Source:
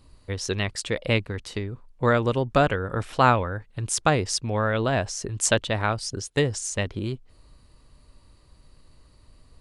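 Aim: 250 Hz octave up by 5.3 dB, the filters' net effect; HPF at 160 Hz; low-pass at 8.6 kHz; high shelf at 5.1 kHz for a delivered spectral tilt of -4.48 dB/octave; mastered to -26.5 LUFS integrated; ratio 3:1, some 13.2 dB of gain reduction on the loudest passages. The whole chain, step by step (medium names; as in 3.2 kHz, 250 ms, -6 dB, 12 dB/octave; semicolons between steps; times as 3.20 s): high-pass 160 Hz; low-pass 8.6 kHz; peaking EQ 250 Hz +7.5 dB; treble shelf 5.1 kHz -8.5 dB; compression 3:1, threshold -31 dBFS; trim +8 dB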